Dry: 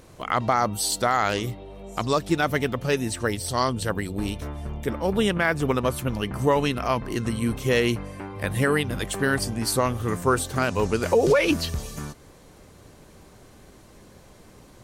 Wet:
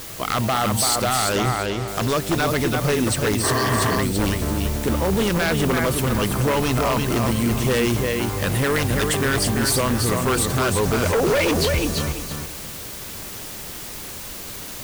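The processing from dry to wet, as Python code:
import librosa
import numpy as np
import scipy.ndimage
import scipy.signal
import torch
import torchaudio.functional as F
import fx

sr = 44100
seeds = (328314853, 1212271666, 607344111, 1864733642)

p1 = fx.over_compress(x, sr, threshold_db=-27.0, ratio=-1.0)
p2 = x + (p1 * librosa.db_to_amplitude(-0.5))
p3 = fx.quant_dither(p2, sr, seeds[0], bits=6, dither='triangular')
p4 = fx.lowpass(p3, sr, hz=5200.0, slope=12, at=(1.32, 1.88))
p5 = fx.echo_feedback(p4, sr, ms=336, feedback_pct=26, wet_db=-5.5)
p6 = fx.spec_repair(p5, sr, seeds[1], start_s=3.46, length_s=0.47, low_hz=250.0, high_hz=2100.0, source='after')
y = 10.0 ** (-13.5 / 20.0) * (np.abs((p6 / 10.0 ** (-13.5 / 20.0) + 3.0) % 4.0 - 2.0) - 1.0)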